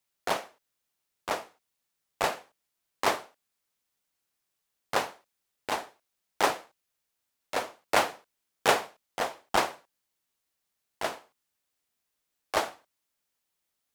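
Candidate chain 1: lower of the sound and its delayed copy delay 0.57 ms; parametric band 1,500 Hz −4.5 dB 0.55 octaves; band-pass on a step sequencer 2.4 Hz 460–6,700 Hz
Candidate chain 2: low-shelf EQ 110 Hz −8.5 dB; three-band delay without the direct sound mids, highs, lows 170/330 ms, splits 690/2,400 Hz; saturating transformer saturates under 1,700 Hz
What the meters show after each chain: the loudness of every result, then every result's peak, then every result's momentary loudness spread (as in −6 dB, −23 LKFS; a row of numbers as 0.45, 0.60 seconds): −44.5, −35.5 LKFS; −21.5, −13.0 dBFS; 13, 11 LU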